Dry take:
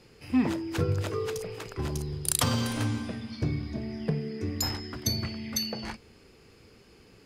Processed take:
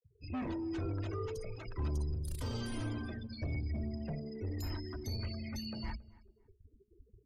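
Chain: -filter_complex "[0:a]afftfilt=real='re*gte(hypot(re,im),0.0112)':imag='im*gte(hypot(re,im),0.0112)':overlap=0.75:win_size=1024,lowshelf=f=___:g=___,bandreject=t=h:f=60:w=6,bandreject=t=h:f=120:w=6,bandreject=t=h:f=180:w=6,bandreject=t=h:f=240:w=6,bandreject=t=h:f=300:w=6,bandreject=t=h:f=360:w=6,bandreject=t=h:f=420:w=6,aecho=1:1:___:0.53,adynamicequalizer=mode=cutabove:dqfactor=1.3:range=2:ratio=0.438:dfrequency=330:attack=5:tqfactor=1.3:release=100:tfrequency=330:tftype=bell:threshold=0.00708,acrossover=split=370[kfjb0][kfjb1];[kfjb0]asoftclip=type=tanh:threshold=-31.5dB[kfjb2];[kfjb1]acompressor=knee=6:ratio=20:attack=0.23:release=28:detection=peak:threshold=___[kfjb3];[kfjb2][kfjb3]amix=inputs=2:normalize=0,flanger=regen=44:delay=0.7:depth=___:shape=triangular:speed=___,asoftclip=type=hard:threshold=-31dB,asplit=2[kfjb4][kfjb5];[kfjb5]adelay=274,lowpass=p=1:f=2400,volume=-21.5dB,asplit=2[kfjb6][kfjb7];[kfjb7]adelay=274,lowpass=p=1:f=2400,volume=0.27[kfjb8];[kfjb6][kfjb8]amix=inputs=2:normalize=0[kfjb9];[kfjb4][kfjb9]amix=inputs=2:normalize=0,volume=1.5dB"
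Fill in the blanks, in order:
120, 7.5, 3.2, -40dB, 2.4, 0.52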